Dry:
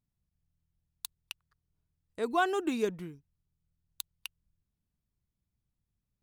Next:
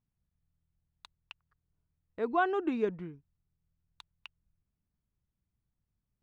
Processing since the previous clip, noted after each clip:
low-pass filter 2,100 Hz 12 dB per octave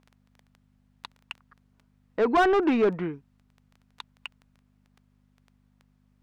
mains hum 50 Hz, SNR 31 dB
surface crackle 10 per second −53 dBFS
mid-hump overdrive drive 23 dB, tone 1,600 Hz, clips at −17 dBFS
level +4 dB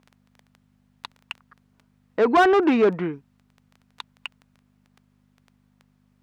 high-pass filter 110 Hz 6 dB per octave
level +4.5 dB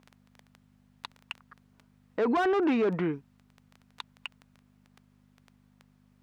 brickwall limiter −21 dBFS, peak gain reduction 11.5 dB

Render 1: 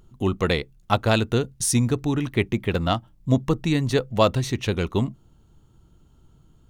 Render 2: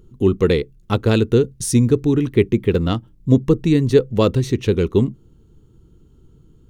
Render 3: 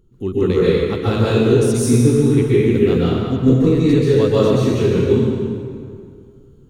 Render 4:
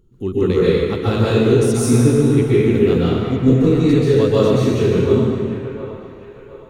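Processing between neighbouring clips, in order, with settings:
low shelf with overshoot 540 Hz +6 dB, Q 3; level −1 dB
dense smooth reverb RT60 2.2 s, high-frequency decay 0.75×, pre-delay 115 ms, DRR −9.5 dB; level −8 dB
delay with a band-pass on its return 716 ms, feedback 40%, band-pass 1,100 Hz, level −7.5 dB

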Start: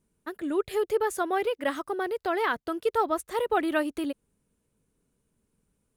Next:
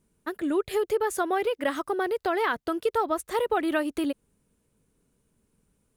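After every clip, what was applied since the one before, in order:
downward compressor 2.5 to 1, threshold −27 dBFS, peak gain reduction 5.5 dB
level +4 dB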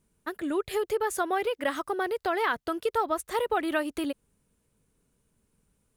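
parametric band 300 Hz −3.5 dB 1.8 octaves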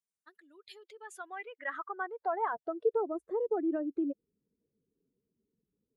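expanding power law on the bin magnitudes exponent 1.7
band-pass filter sweep 5,500 Hz → 360 Hz, 0:00.58–0:03.14
level +1 dB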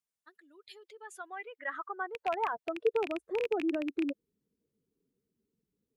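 loose part that buzzes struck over −53 dBFS, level −25 dBFS

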